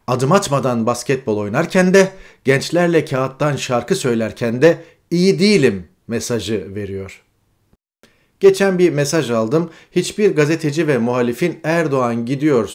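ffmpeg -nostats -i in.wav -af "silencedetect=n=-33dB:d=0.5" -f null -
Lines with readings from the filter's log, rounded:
silence_start: 7.15
silence_end: 8.03 | silence_duration: 0.89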